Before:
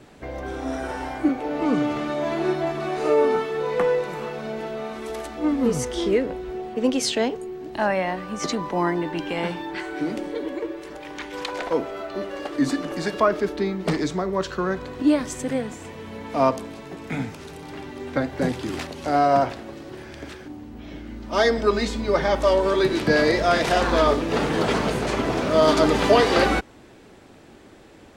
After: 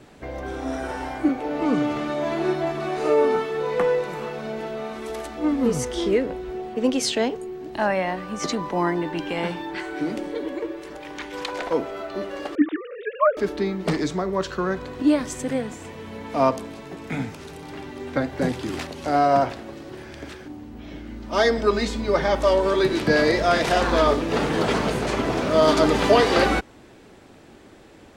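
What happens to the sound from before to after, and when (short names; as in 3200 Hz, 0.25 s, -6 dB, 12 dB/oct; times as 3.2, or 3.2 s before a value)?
12.55–13.37 sine-wave speech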